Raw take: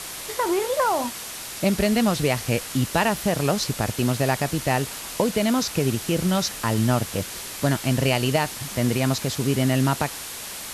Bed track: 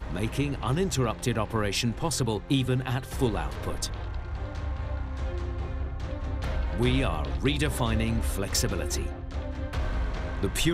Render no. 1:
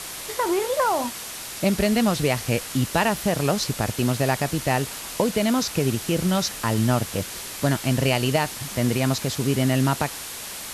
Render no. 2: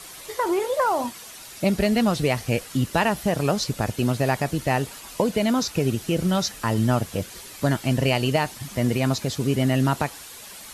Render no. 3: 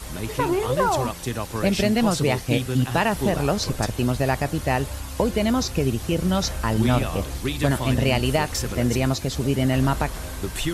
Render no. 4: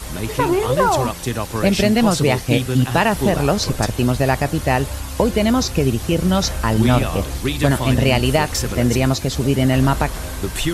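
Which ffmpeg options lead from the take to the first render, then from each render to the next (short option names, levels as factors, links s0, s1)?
-af anull
-af "afftdn=nr=9:nf=-35"
-filter_complex "[1:a]volume=0.891[s0];[0:a][s0]amix=inputs=2:normalize=0"
-af "volume=1.78"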